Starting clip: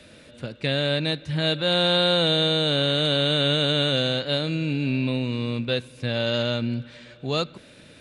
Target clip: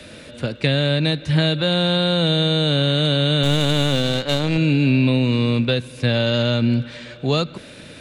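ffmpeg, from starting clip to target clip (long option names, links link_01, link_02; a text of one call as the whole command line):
ffmpeg -i in.wav -filter_complex "[0:a]asettb=1/sr,asplit=3[link_01][link_02][link_03];[link_01]atrim=end=3.434[link_04];[link_02]atrim=start=3.43:end=4.58,asetpts=PTS-STARTPTS,afade=type=in:duration=0.004:curve=qsin,afade=type=out:start_time=1.146:duration=0.004:curve=qsin,aeval=exprs='0.266*(cos(1*acos(clip(val(0)/0.266,-1,1)))-cos(1*PI/2))+0.0335*(cos(4*acos(clip(val(0)/0.266,-1,1)))-cos(4*PI/2))+0.015*(cos(7*acos(clip(val(0)/0.266,-1,1)))-cos(7*PI/2))':channel_layout=same[link_05];[link_03]atrim=start=4.576[link_06];[link_04][link_05]acrossfade=duration=0.004:curve1=hsin:curve2=qsin[link_07];[link_07][link_06]acrossfade=duration=0.004:curve1=qsin:curve2=hsin,acrossover=split=240[link_08][link_09];[link_09]acompressor=threshold=-27dB:ratio=6[link_10];[link_08][link_10]amix=inputs=2:normalize=0,volume=9dB" out.wav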